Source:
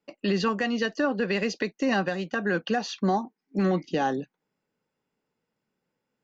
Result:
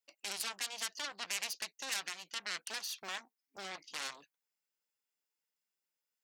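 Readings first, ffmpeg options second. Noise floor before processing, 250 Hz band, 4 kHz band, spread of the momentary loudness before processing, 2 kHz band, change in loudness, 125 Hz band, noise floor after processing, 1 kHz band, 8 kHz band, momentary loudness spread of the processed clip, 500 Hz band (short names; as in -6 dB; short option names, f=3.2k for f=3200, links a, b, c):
-84 dBFS, -34.0 dB, -2.5 dB, 4 LU, -11.5 dB, -12.5 dB, under -35 dB, under -85 dBFS, -17.5 dB, n/a, 8 LU, -26.5 dB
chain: -af "aeval=exprs='0.188*(cos(1*acos(clip(val(0)/0.188,-1,1)))-cos(1*PI/2))+0.0335*(cos(3*acos(clip(val(0)/0.188,-1,1)))-cos(3*PI/2))+0.0531*(cos(4*acos(clip(val(0)/0.188,-1,1)))-cos(4*PI/2))+0.0531*(cos(7*acos(clip(val(0)/0.188,-1,1)))-cos(7*PI/2))':c=same,aderivative,volume=-3dB"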